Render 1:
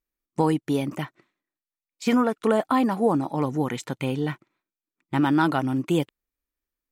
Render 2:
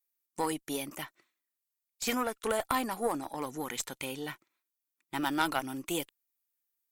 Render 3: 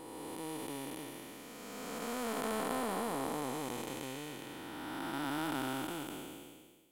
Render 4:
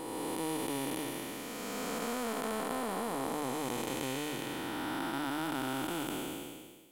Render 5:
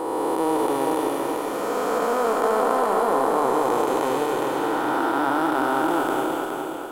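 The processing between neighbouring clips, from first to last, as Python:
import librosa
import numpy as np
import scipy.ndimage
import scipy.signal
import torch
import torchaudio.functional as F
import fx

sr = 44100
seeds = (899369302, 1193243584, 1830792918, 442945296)

y1 = fx.wow_flutter(x, sr, seeds[0], rate_hz=2.1, depth_cents=18.0)
y1 = fx.riaa(y1, sr, side='recording')
y1 = fx.cheby_harmonics(y1, sr, harmonics=(4, 7), levels_db=(-17, -29), full_scale_db=-6.0)
y1 = y1 * librosa.db_to_amplitude(-5.0)
y2 = fx.spec_blur(y1, sr, span_ms=938.0)
y2 = y2 * librosa.db_to_amplitude(3.0)
y3 = fx.hum_notches(y2, sr, base_hz=50, count=3)
y3 = fx.rider(y3, sr, range_db=4, speed_s=0.5)
y3 = y3 * librosa.db_to_amplitude(4.0)
y4 = fx.band_shelf(y3, sr, hz=700.0, db=13.0, octaves=2.5)
y4 = fx.echo_feedback(y4, sr, ms=416, feedback_pct=46, wet_db=-5)
y4 = y4 * librosa.db_to_amplitude(2.5)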